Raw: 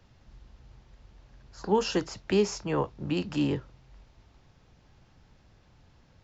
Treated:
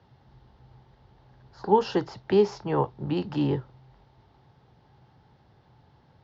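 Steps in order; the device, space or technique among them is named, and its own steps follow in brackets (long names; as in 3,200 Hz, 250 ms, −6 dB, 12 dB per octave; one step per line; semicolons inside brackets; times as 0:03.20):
guitar cabinet (loudspeaker in its box 77–4,600 Hz, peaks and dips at 130 Hz +7 dB, 400 Hz +5 dB, 840 Hz +9 dB, 2,500 Hz −7 dB)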